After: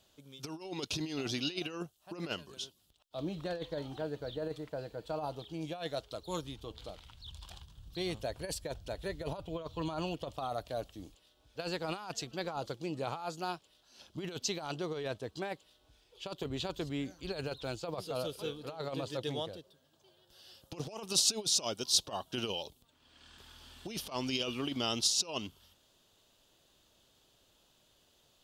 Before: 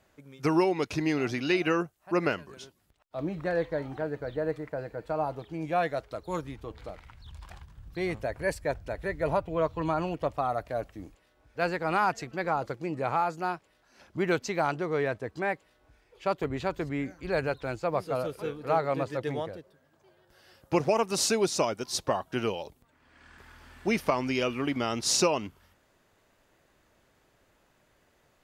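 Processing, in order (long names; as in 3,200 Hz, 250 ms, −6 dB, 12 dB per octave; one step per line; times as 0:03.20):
compressor whose output falls as the input rises −29 dBFS, ratio −0.5
high shelf with overshoot 2,600 Hz +7.5 dB, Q 3
level −7 dB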